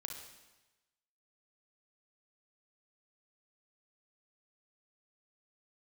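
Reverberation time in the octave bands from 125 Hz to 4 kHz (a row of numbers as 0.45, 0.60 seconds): 1.2, 1.0, 1.1, 1.1, 1.1, 1.1 seconds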